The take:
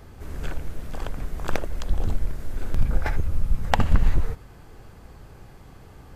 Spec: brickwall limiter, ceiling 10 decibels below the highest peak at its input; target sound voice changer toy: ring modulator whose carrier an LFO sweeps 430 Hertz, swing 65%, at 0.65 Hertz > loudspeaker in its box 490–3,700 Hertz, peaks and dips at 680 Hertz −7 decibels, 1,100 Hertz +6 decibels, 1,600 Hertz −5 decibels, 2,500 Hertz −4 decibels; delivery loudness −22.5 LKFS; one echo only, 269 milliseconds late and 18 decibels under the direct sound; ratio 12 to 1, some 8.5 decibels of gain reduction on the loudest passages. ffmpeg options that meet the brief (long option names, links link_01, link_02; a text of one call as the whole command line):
ffmpeg -i in.wav -af "acompressor=threshold=-20dB:ratio=12,alimiter=limit=-20dB:level=0:latency=1,aecho=1:1:269:0.126,aeval=exprs='val(0)*sin(2*PI*430*n/s+430*0.65/0.65*sin(2*PI*0.65*n/s))':channel_layout=same,highpass=490,equalizer=frequency=680:width_type=q:width=4:gain=-7,equalizer=frequency=1100:width_type=q:width=4:gain=6,equalizer=frequency=1600:width_type=q:width=4:gain=-5,equalizer=frequency=2500:width_type=q:width=4:gain=-4,lowpass=frequency=3700:width=0.5412,lowpass=frequency=3700:width=1.3066,volume=14.5dB" out.wav